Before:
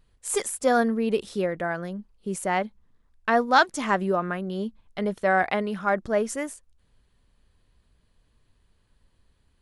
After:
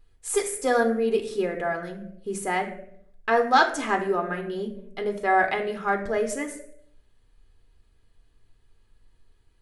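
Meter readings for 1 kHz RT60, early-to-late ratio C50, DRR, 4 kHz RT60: 0.60 s, 10.0 dB, 4.0 dB, 0.45 s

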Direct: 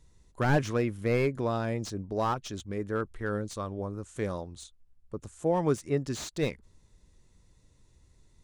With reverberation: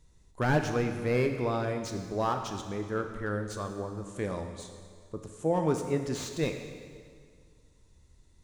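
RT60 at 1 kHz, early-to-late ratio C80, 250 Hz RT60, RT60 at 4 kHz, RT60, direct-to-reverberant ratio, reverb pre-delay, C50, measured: 1.9 s, 8.0 dB, 2.0 s, 1.8 s, 1.9 s, 5.0 dB, 5 ms, 6.5 dB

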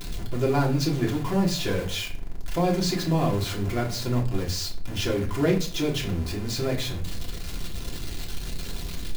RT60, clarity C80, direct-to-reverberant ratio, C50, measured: 0.45 s, 16.0 dB, -3.0 dB, 11.0 dB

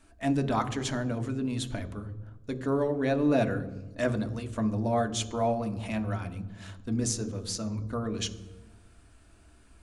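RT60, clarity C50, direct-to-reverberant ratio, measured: 1.1 s, 13.5 dB, 5.0 dB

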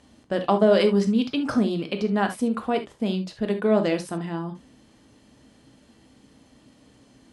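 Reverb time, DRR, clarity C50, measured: not exponential, 6.0 dB, 11.5 dB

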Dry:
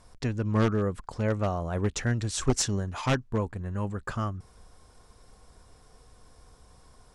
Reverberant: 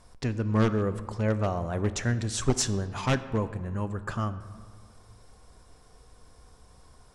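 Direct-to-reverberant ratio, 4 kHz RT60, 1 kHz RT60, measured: 12.0 dB, 1.0 s, 1.7 s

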